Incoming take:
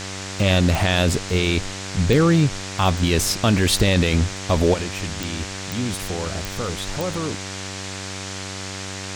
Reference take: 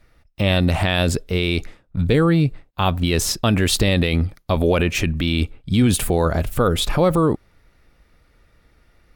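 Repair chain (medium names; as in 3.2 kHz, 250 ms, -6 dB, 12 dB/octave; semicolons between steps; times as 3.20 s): de-click; de-hum 96 Hz, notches 26; noise print and reduce 25 dB; trim 0 dB, from 4.74 s +10 dB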